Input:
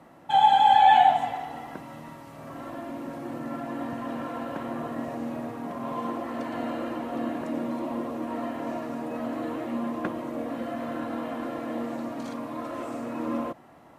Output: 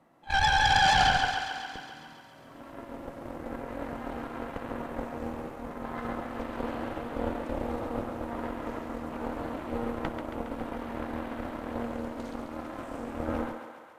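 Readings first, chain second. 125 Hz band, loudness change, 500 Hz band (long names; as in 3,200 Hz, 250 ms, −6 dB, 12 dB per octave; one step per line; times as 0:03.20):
+4.0 dB, −4.0 dB, −2.5 dB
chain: dynamic equaliser 220 Hz, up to +6 dB, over −43 dBFS, Q 1.1
echo ahead of the sound 66 ms −16 dB
harmonic generator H 3 −18 dB, 8 −11 dB, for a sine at −5.5 dBFS
on a send: feedback echo with a high-pass in the loop 137 ms, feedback 68%, high-pass 380 Hz, level −6 dB
on the sum: level −7 dB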